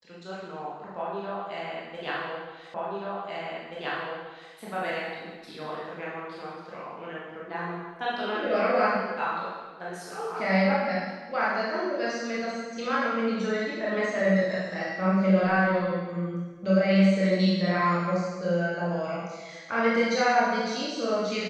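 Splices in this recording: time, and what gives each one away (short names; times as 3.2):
2.74 repeat of the last 1.78 s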